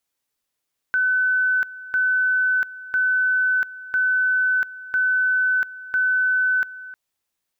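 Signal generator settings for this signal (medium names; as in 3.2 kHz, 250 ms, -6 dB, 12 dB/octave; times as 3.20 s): two-level tone 1.51 kHz -16.5 dBFS, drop 17.5 dB, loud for 0.69 s, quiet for 0.31 s, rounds 6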